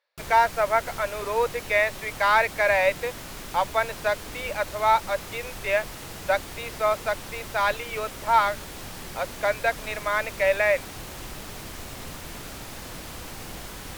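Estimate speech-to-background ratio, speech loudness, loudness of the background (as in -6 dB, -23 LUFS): 13.0 dB, -25.0 LUFS, -38.0 LUFS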